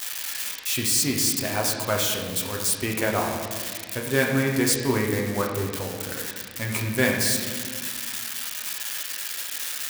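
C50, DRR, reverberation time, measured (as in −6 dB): 3.0 dB, −0.5 dB, 1.7 s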